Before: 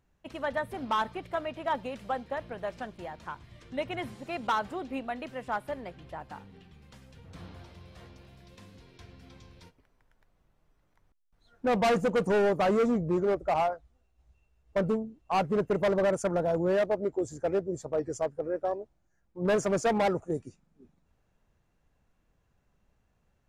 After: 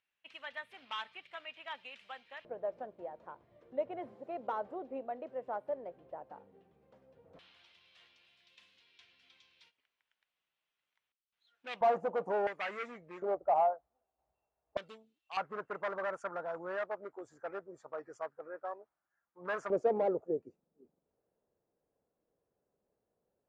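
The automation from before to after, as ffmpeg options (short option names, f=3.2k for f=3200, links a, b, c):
-af "asetnsamples=n=441:p=0,asendcmd='2.45 bandpass f 540;7.39 bandpass f 3000;11.81 bandpass f 770;12.47 bandpass f 2100;13.22 bandpass f 730;14.77 bandpass f 3400;15.37 bandpass f 1300;19.7 bandpass f 470',bandpass=f=2.7k:t=q:w=2.2:csg=0"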